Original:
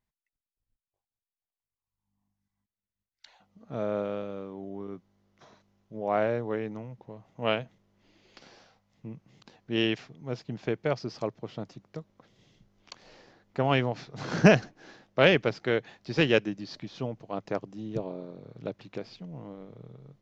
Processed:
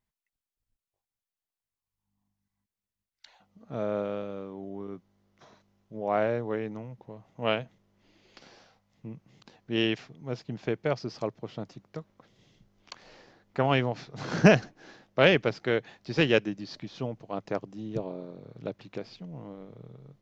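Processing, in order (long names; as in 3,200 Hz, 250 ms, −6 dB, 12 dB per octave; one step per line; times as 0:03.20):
0:11.64–0:13.66: dynamic equaliser 1,500 Hz, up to +5 dB, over −57 dBFS, Q 0.72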